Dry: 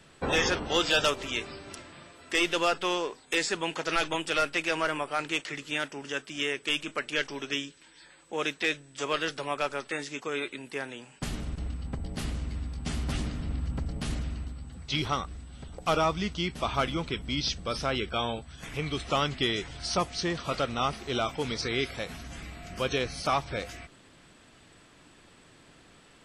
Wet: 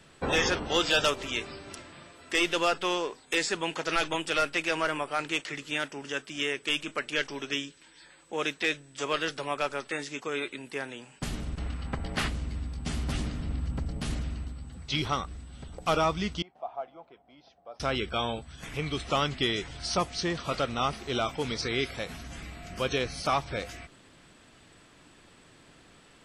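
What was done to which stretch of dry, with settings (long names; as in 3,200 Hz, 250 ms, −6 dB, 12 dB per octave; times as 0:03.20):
0:11.56–0:12.27: parametric band 1,600 Hz +6.5 dB → +14 dB 2.9 octaves
0:16.42–0:17.80: resonant band-pass 720 Hz, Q 7.2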